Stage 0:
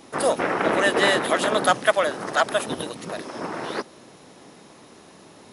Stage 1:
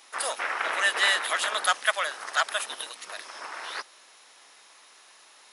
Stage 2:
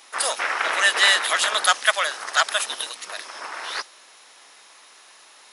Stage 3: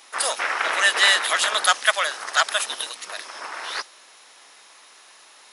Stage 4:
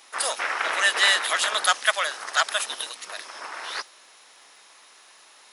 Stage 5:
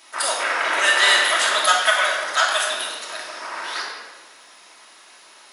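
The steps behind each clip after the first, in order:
high-pass filter 1,300 Hz 12 dB per octave
dynamic equaliser 5,700 Hz, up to +5 dB, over −43 dBFS, Q 0.76; level +4.5 dB
no processing that can be heard
surface crackle 25 per second −49 dBFS; level −2.5 dB
rectangular room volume 1,300 cubic metres, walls mixed, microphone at 2.8 metres

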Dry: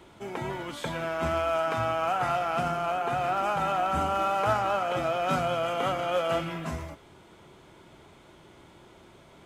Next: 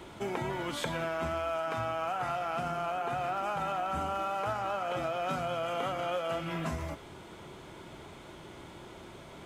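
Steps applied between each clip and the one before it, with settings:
downward compressor 6 to 1, threshold −36 dBFS, peak gain reduction 14.5 dB
level +5 dB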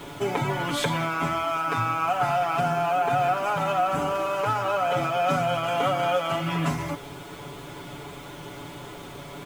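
bit reduction 10 bits
comb filter 7 ms, depth 97%
level +6 dB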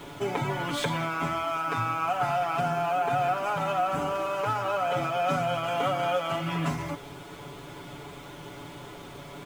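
running median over 3 samples
level −3 dB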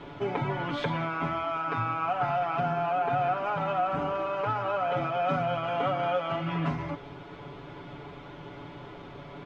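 high-frequency loss of the air 250 metres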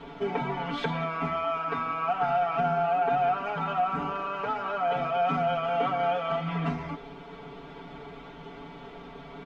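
comb filter 4.4 ms, depth 93%
level −2 dB

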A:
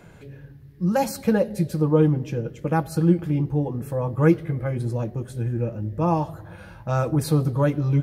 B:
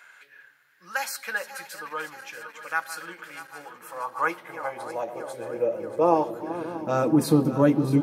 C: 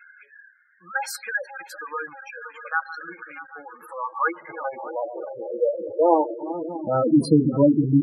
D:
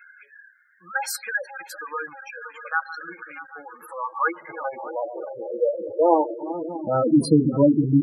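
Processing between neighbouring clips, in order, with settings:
feedback delay that plays each chunk backwards 316 ms, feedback 78%, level −13 dB; high-pass filter sweep 1,500 Hz → 240 Hz, 0:03.54–0:07.24
gate on every frequency bin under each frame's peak −10 dB strong; level +3.5 dB
high-shelf EQ 5,900 Hz +6 dB

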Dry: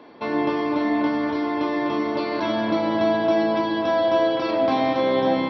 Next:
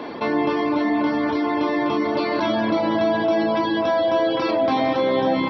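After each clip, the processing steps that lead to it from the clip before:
reverb reduction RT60 0.53 s
envelope flattener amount 50%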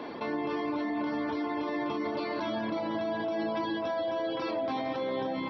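brickwall limiter −17 dBFS, peak gain reduction 7.5 dB
level −7.5 dB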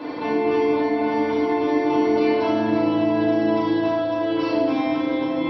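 feedback delay network reverb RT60 1 s, low-frequency decay 1.35×, high-frequency decay 0.9×, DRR −7.5 dB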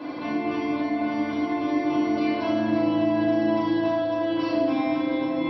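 notch comb filter 450 Hz
level −2 dB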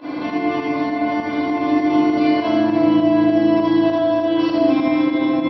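fake sidechain pumping 100 BPM, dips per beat 2, −16 dB, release 85 ms
on a send: single-tap delay 79 ms −3.5 dB
on the sum: level +5 dB

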